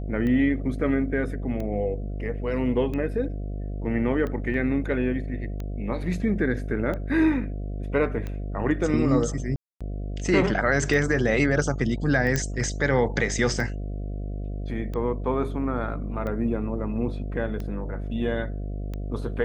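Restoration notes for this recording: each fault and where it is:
buzz 50 Hz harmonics 14 -31 dBFS
tick 45 rpm -21 dBFS
4.54 gap 2.7 ms
9.56–9.81 gap 0.246 s
12.36 pop -10 dBFS

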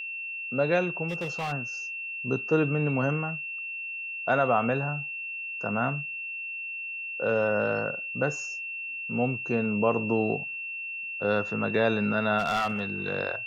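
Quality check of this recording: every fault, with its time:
tone 2700 Hz -33 dBFS
1.08–1.53 clipped -27.5 dBFS
12.38–12.8 clipped -22.5 dBFS

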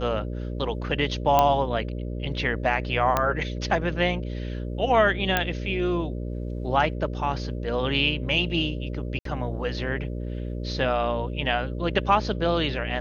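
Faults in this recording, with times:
buzz 60 Hz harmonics 10 -31 dBFS
1.39 pop -6 dBFS
3.17 pop -8 dBFS
5.37 pop -7 dBFS
9.19–9.25 gap 63 ms

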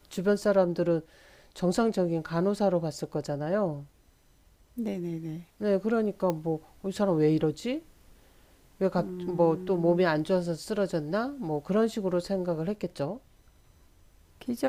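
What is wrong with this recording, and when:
6.3 pop -16 dBFS

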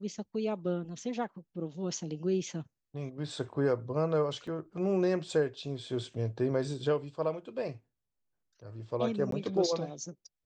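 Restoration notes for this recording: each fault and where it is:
4.47 gap 3.6 ms
9.31–9.32 gap 13 ms

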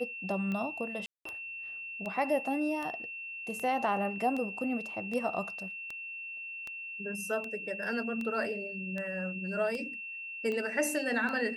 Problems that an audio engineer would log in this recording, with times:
tick 78 rpm -25 dBFS
tone 2700 Hz -39 dBFS
1.06–1.25 gap 0.194 s

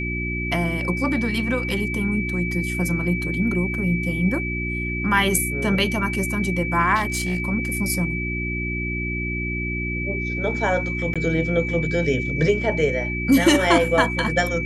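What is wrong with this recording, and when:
hum 60 Hz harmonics 6 -28 dBFS
tone 2300 Hz -27 dBFS
6.95–7.4 clipped -18.5 dBFS
11.14–11.16 gap 16 ms

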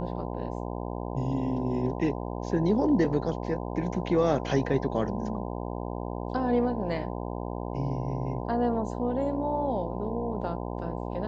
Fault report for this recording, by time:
buzz 60 Hz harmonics 17 -34 dBFS

